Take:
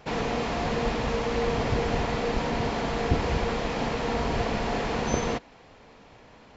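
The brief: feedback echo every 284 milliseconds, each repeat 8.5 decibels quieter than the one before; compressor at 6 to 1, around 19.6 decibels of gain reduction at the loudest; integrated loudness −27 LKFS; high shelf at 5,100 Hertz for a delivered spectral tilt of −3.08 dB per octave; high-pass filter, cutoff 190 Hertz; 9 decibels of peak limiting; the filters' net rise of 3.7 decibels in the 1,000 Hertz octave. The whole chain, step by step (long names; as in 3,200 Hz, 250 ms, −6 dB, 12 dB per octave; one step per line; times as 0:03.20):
high-pass filter 190 Hz
parametric band 1,000 Hz +5 dB
high-shelf EQ 5,100 Hz −3.5 dB
downward compressor 6 to 1, threshold −43 dBFS
brickwall limiter −37 dBFS
repeating echo 284 ms, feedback 38%, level −8.5 dB
level +19 dB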